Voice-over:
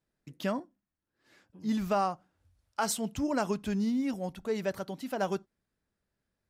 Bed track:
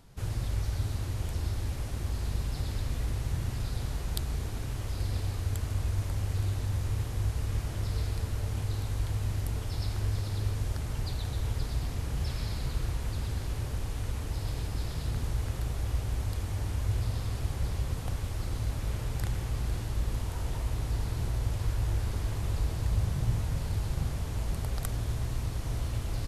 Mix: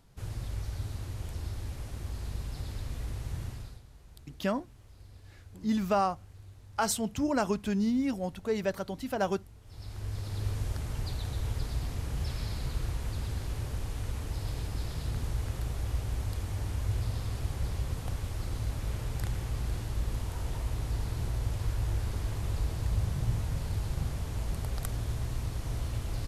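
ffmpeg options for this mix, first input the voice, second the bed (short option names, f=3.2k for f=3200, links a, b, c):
-filter_complex "[0:a]adelay=4000,volume=1.5dB[a];[1:a]volume=14dB,afade=t=out:st=3.43:d=0.39:silence=0.16788,afade=t=in:st=9.63:d=0.88:silence=0.112202[b];[a][b]amix=inputs=2:normalize=0"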